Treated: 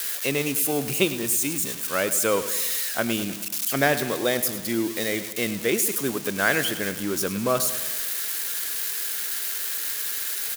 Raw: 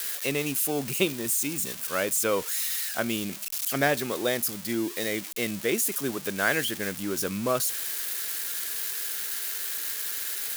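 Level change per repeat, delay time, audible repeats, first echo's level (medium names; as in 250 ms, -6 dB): -5.0 dB, 104 ms, 5, -13.0 dB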